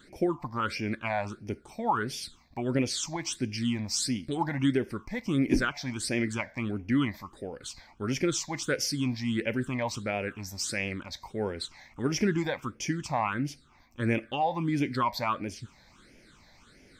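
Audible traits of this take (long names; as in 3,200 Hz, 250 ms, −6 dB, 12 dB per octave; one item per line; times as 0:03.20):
phaser sweep stages 8, 1.5 Hz, lowest notch 380–1,200 Hz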